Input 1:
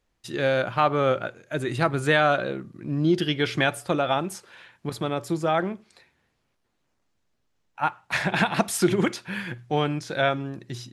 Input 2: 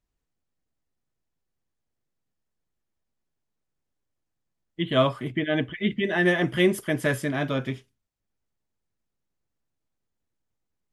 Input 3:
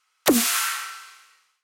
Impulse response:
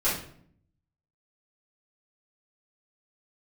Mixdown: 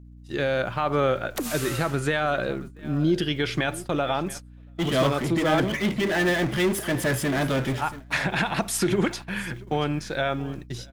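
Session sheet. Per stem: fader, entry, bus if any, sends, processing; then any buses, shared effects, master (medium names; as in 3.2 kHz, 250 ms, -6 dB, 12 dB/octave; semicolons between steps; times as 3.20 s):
+1.0 dB, 0.00 s, no send, echo send -18 dB, peak limiter -14.5 dBFS, peak gain reduction 7 dB
-13.5 dB, 0.00 s, no send, echo send -16 dB, level rider gain up to 11 dB; power-law waveshaper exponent 0.5
-12.0 dB, 1.10 s, no send, no echo send, none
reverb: none
echo: delay 681 ms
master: gate -36 dBFS, range -24 dB; hum 60 Hz, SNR 20 dB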